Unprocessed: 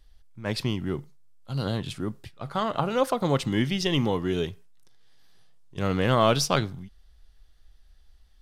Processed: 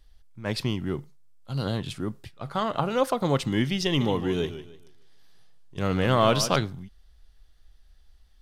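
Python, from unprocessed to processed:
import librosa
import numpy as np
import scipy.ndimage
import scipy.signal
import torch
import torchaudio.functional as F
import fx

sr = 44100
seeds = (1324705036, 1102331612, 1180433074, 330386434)

y = fx.echo_warbled(x, sr, ms=149, feedback_pct=31, rate_hz=2.8, cents=110, wet_db=-12.0, at=(3.85, 6.56))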